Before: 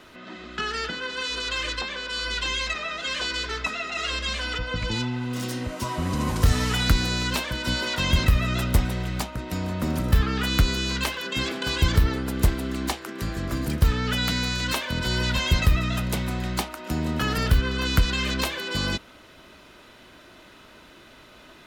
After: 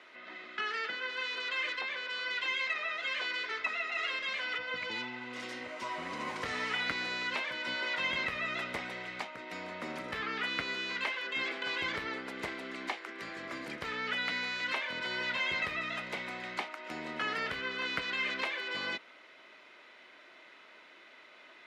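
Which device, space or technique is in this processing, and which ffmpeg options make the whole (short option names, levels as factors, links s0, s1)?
intercom: -filter_complex "[0:a]highpass=430,lowpass=4100,equalizer=f=2100:t=o:w=0.39:g=9,asoftclip=type=tanh:threshold=0.299,acrossover=split=3600[s0][s1];[s1]acompressor=threshold=0.00891:ratio=4:attack=1:release=60[s2];[s0][s2]amix=inputs=2:normalize=0,equalizer=f=12000:t=o:w=1.3:g=4.5,volume=0.447"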